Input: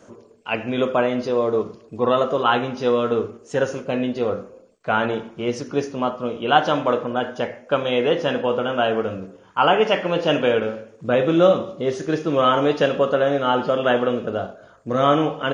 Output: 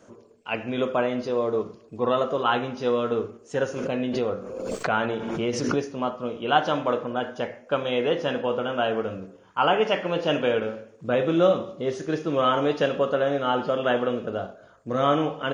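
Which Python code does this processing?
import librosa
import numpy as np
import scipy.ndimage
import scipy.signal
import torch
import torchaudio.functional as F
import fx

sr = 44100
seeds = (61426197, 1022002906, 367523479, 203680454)

y = fx.pre_swell(x, sr, db_per_s=32.0, at=(3.76, 5.93))
y = F.gain(torch.from_numpy(y), -4.5).numpy()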